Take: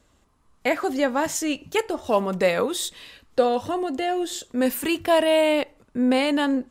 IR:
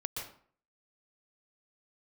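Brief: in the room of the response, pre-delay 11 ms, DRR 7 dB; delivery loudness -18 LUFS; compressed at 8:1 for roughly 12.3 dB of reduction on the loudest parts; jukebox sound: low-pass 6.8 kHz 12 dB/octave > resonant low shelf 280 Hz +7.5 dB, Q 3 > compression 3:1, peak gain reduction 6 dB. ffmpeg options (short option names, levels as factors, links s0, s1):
-filter_complex "[0:a]acompressor=threshold=0.0447:ratio=8,asplit=2[s0][s1];[1:a]atrim=start_sample=2205,adelay=11[s2];[s1][s2]afir=irnorm=-1:irlink=0,volume=0.376[s3];[s0][s3]amix=inputs=2:normalize=0,lowpass=6800,lowshelf=f=280:t=q:w=3:g=7.5,acompressor=threshold=0.0631:ratio=3,volume=4.22"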